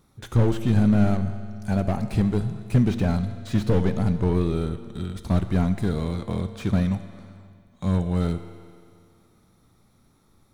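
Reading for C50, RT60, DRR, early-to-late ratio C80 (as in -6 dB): 11.0 dB, 2.2 s, 10.0 dB, 12.0 dB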